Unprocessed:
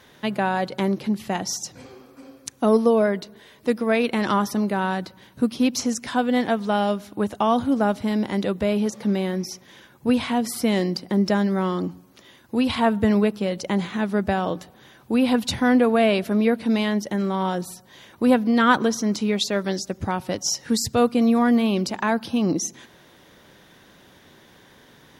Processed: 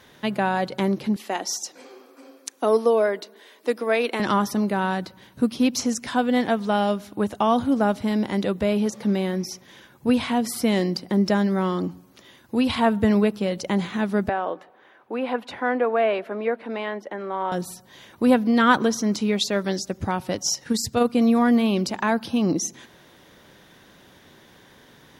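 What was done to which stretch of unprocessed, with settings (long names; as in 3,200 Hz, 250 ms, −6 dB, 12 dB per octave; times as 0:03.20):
0:01.16–0:04.20: high-pass filter 290 Hz 24 dB per octave
0:14.29–0:17.52: three-way crossover with the lows and the highs turned down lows −24 dB, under 340 Hz, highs −21 dB, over 2,500 Hz
0:20.54–0:21.15: amplitude modulation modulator 23 Hz, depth 25%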